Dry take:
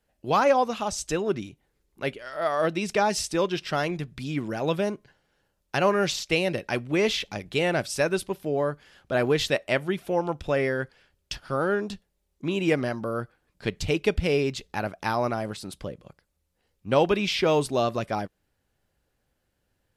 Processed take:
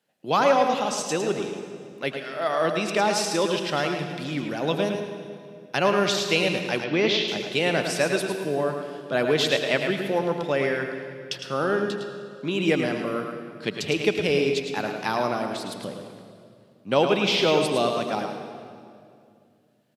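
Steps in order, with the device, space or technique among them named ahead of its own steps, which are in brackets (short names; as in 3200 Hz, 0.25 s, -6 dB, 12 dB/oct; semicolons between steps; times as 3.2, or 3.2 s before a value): PA in a hall (HPF 140 Hz 24 dB/oct; bell 3500 Hz +4.5 dB 0.91 oct; echo 0.108 s -7 dB; reverb RT60 2.3 s, pre-delay 74 ms, DRR 7.5 dB); 6.84–7.28 LPF 5400 Hz 24 dB/oct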